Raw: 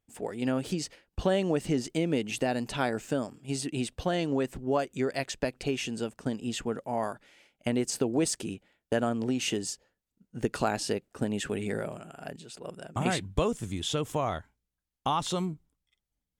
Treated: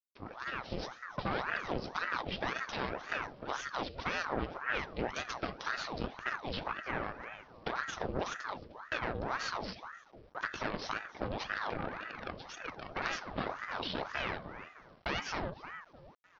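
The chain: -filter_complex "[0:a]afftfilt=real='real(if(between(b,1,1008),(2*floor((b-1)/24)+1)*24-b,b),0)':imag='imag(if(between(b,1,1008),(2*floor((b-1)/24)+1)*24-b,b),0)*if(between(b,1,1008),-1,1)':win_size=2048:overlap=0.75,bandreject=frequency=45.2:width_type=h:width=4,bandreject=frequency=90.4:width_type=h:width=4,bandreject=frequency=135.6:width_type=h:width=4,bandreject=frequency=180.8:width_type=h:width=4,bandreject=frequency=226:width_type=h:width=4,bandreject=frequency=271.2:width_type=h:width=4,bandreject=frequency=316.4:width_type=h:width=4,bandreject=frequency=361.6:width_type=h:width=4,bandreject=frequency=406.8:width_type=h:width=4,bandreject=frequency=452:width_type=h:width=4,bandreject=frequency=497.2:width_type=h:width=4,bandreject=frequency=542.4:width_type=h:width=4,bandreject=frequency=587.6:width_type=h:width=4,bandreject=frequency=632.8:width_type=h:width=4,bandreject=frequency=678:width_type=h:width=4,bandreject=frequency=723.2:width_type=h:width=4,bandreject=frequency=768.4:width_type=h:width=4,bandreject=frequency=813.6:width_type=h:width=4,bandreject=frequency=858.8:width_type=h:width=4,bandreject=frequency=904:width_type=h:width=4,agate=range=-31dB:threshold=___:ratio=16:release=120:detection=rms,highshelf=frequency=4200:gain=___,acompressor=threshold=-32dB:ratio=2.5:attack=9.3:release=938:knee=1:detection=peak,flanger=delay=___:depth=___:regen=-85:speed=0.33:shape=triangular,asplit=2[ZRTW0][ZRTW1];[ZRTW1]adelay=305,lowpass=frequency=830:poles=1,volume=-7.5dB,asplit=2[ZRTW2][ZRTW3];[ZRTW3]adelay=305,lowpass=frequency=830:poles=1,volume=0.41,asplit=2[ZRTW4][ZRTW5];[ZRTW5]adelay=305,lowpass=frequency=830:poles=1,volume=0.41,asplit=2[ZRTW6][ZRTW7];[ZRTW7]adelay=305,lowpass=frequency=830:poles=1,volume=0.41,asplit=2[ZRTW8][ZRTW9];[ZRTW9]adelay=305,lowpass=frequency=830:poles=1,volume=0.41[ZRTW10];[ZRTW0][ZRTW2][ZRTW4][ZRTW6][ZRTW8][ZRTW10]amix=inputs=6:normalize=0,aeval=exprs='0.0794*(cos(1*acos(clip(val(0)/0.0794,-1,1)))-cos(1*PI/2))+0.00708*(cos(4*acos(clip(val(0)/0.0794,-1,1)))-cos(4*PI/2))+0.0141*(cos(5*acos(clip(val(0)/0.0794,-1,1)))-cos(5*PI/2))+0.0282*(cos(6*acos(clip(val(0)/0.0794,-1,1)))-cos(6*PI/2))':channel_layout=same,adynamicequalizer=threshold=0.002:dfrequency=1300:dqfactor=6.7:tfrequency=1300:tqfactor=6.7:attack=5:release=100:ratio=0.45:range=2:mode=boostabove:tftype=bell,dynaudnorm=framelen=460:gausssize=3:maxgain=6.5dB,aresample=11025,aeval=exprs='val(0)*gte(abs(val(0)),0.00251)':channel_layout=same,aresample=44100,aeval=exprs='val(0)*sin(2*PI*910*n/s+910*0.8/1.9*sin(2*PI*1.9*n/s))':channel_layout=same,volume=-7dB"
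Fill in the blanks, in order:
-48dB, 6.5, 9.4, 7.9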